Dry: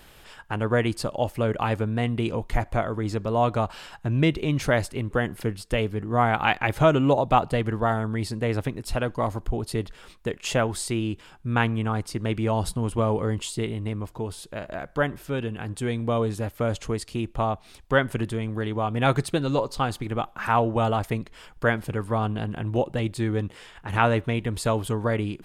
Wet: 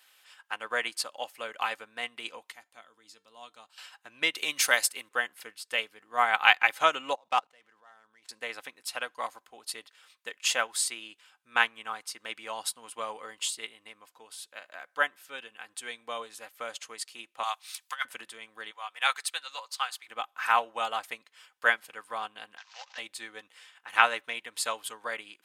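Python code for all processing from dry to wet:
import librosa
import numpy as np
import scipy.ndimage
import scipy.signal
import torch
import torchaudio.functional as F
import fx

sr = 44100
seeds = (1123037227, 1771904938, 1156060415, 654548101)

y = fx.chain(x, sr, fx.band_shelf(hz=990.0, db=-8.0, octaves=2.9),
    fx.comb_fb(f0_hz=450.0, decay_s=0.2, harmonics='all', damping=0.0, mix_pct=50), at=(2.52, 3.78))
y = fx.chain(y, sr, fx.high_shelf(hz=5300.0, db=11.5),
    fx.band_squash(depth_pct=40), at=(4.35, 5.09))
y = fx.chain(y, sr, fx.median_filter(points=9),
    fx.lowpass(hz=9900.0, slope=12),
    fx.level_steps(step_db=20), at=(7.15, 8.29))
y = fx.chain(y, sr, fx.highpass(hz=810.0, slope=24),
    fx.over_compress(threshold_db=-29.0, ratio=-0.5),
    fx.high_shelf(hz=3300.0, db=11.0), at=(17.43, 18.05))
y = fx.chain(y, sr, fx.highpass(hz=1000.0, slope=12),
    fx.quant_float(bits=8), at=(18.71, 20.08))
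y = fx.chain(y, sr, fx.cvsd(bps=32000),
    fx.highpass(hz=890.0, slope=24),
    fx.pre_swell(db_per_s=140.0), at=(22.57, 22.98))
y = scipy.signal.sosfilt(scipy.signal.bessel(2, 1600.0, 'highpass', norm='mag', fs=sr, output='sos'), y)
y = y + 0.32 * np.pad(y, (int(3.9 * sr / 1000.0), 0))[:len(y)]
y = fx.upward_expand(y, sr, threshold_db=-51.0, expansion=1.5)
y = y * 10.0 ** (7.5 / 20.0)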